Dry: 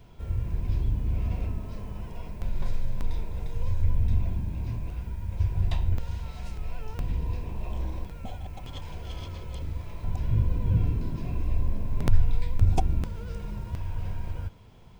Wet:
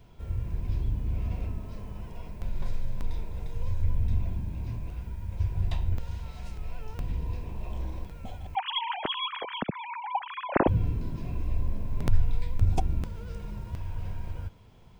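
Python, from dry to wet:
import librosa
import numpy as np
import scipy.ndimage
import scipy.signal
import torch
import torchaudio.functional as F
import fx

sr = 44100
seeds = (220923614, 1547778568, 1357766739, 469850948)

y = fx.sine_speech(x, sr, at=(8.55, 10.68))
y = F.gain(torch.from_numpy(y), -2.5).numpy()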